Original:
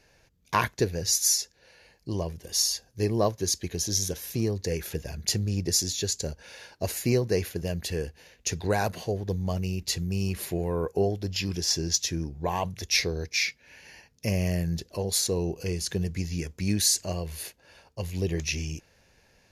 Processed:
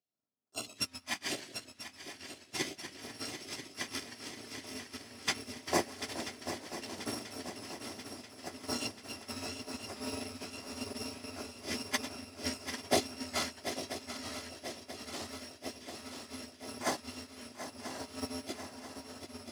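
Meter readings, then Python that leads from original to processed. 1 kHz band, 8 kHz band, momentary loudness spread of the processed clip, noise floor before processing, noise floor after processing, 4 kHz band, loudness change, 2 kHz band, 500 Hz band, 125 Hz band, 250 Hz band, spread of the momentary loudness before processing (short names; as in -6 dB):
-7.0 dB, -14.5 dB, 10 LU, -63 dBFS, -59 dBFS, -9.0 dB, -11.5 dB, -6.0 dB, -11.5 dB, -22.5 dB, -10.5 dB, 10 LU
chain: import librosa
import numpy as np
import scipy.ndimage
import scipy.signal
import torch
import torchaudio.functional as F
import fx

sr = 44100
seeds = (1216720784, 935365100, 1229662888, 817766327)

y = fx.bit_reversed(x, sr, seeds[0], block=256)
y = scipy.signal.sosfilt(scipy.signal.butter(4, 170.0, 'highpass', fs=sr, output='sos'), y)
y = fx.phaser_stages(y, sr, stages=2, low_hz=400.0, high_hz=3300.0, hz=0.73, feedback_pct=0)
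y = fx.air_absorb(y, sr, metres=78.0)
y = fx.tremolo_random(y, sr, seeds[1], hz=3.5, depth_pct=55)
y = fx.tilt_eq(y, sr, slope=-2.0)
y = fx.doubler(y, sr, ms=20.0, db=-13)
y = fx.echo_pitch(y, sr, ms=84, semitones=-1, count=3, db_per_echo=-6.0)
y = fx.hum_notches(y, sr, base_hz=50, count=5)
y = fx.echo_swing(y, sr, ms=986, ratio=3, feedback_pct=75, wet_db=-5.0)
y = fx.upward_expand(y, sr, threshold_db=-49.0, expansion=2.5)
y = y * librosa.db_to_amplitude(9.0)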